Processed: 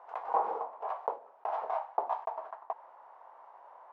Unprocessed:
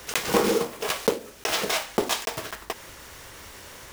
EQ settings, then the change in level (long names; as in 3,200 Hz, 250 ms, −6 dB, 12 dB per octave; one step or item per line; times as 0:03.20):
flat-topped band-pass 830 Hz, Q 2.4
+1.5 dB